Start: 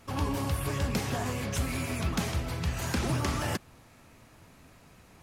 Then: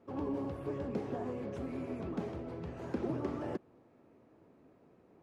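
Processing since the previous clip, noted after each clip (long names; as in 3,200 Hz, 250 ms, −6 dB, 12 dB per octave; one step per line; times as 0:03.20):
resonant band-pass 380 Hz, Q 1.7
level +1 dB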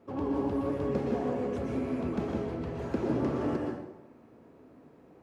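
dense smooth reverb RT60 0.89 s, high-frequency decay 0.75×, pre-delay 105 ms, DRR 0.5 dB
level +4 dB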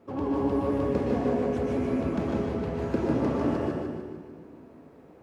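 echo with a time of its own for lows and highs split 350 Hz, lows 214 ms, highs 149 ms, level −5 dB
level +2.5 dB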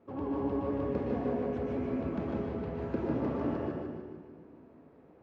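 Bessel low-pass filter 2,900 Hz, order 2
level −6 dB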